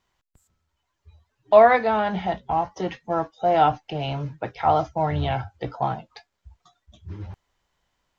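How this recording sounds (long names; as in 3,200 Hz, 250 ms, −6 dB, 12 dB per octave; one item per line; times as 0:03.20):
background noise floor −78 dBFS
spectral slope −5.0 dB per octave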